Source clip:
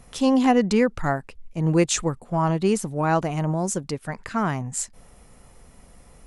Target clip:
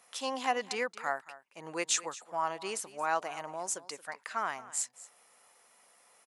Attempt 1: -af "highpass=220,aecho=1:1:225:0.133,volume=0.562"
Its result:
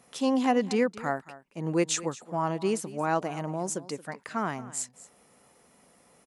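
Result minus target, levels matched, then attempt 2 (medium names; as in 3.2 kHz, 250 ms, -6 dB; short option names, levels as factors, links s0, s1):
250 Hz band +12.0 dB
-af "highpass=800,aecho=1:1:225:0.133,volume=0.562"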